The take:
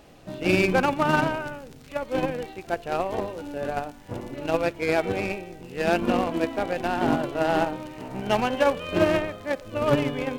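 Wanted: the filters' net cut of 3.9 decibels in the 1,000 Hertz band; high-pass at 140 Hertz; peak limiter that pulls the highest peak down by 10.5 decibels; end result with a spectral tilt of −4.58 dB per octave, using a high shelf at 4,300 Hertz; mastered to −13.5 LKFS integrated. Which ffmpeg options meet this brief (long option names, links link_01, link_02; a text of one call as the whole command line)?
ffmpeg -i in.wav -af "highpass=140,equalizer=frequency=1000:width_type=o:gain=-5,highshelf=frequency=4300:gain=-6,volume=17.5dB,alimiter=limit=-1dB:level=0:latency=1" out.wav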